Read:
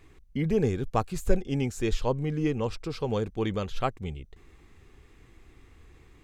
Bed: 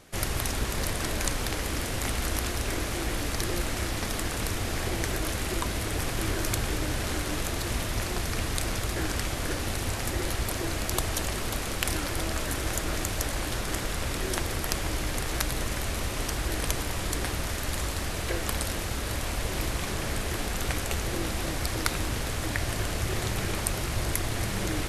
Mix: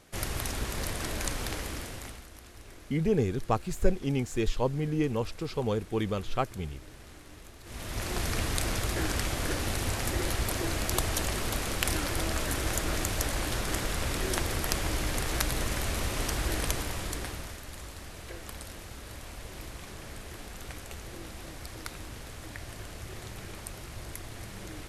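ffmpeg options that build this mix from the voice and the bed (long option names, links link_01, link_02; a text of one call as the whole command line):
ffmpeg -i stem1.wav -i stem2.wav -filter_complex "[0:a]adelay=2550,volume=-1dB[link_01];[1:a]volume=16dB,afade=type=out:start_time=1.52:duration=0.74:silence=0.149624,afade=type=in:start_time=7.63:duration=0.6:silence=0.1,afade=type=out:start_time=16.51:duration=1.12:silence=0.251189[link_02];[link_01][link_02]amix=inputs=2:normalize=0" out.wav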